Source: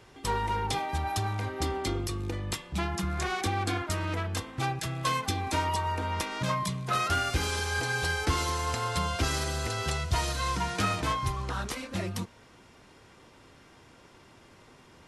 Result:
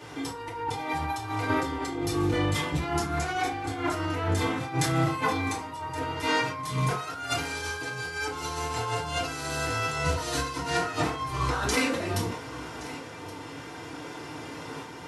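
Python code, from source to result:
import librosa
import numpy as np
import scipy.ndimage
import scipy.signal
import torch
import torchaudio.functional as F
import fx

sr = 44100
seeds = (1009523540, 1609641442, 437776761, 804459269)

p1 = scipy.signal.sosfilt(scipy.signal.butter(2, 77.0, 'highpass', fs=sr, output='sos'), x)
p2 = fx.low_shelf(p1, sr, hz=120.0, db=-4.0)
p3 = fx.over_compress(p2, sr, threshold_db=-37.0, ratio=-0.5)
p4 = fx.tremolo_shape(p3, sr, shape='saw_up', hz=0.54, depth_pct=35)
p5 = p4 + fx.echo_single(p4, sr, ms=1122, db=-17.5, dry=0)
p6 = fx.rev_fdn(p5, sr, rt60_s=0.46, lf_ratio=0.8, hf_ratio=0.6, size_ms=20.0, drr_db=-7.0)
p7 = fx.sustainer(p6, sr, db_per_s=77.0)
y = p7 * 10.0 ** (3.0 / 20.0)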